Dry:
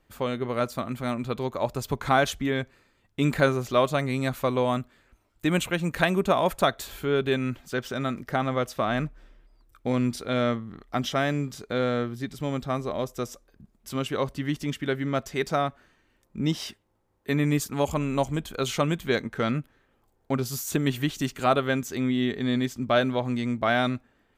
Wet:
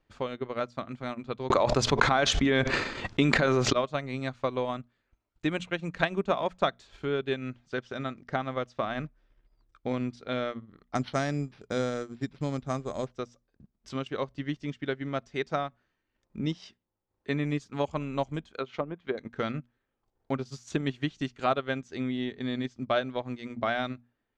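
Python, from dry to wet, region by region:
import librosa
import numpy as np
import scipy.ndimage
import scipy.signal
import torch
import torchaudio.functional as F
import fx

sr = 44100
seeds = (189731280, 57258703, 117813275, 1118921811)

y = fx.chain(x, sr, fx.low_shelf(hz=110.0, db=-8.5),
    fx.env_flatten(amount_pct=100), at=(1.5, 3.73))
y = fx.chain(y, sr, fx.low_shelf(hz=330.0, db=5.0),
    fx.resample_bad(factor=6, down='none', up='hold'), at=(10.95, 13.12))
y = fx.chain(y, sr, fx.highpass(hz=320.0, slope=6),
    fx.env_lowpass_down(base_hz=650.0, full_db=-22.0), at=(18.49, 19.18))
y = scipy.signal.sosfilt(scipy.signal.butter(4, 6200.0, 'lowpass', fs=sr, output='sos'), y)
y = fx.hum_notches(y, sr, base_hz=60, count=4)
y = fx.transient(y, sr, attack_db=4, sustain_db=-9)
y = y * librosa.db_to_amplitude(-6.5)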